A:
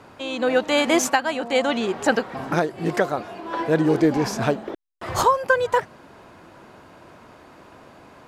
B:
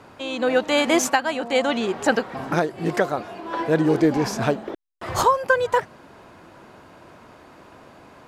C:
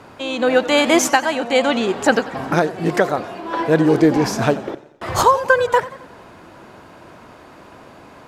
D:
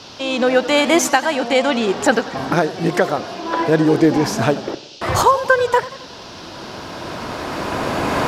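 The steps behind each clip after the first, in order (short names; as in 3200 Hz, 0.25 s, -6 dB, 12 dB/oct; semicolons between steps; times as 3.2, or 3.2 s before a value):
nothing audible
warbling echo 90 ms, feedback 50%, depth 113 cents, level -17 dB; gain +4.5 dB
recorder AGC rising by 10 dB/s; band noise 2600–5700 Hz -41 dBFS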